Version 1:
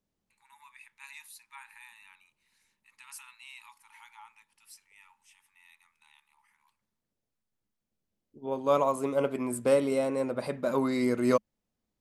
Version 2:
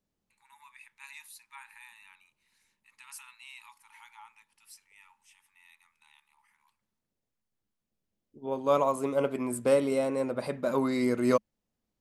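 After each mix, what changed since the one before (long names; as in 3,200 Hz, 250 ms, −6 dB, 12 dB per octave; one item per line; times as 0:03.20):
nothing changed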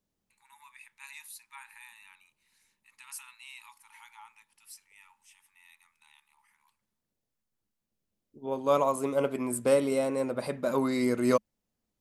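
master: add high-shelf EQ 6,600 Hz +5.5 dB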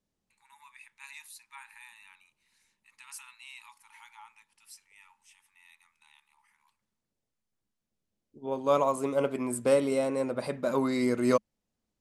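master: add low-pass filter 10,000 Hz 12 dB per octave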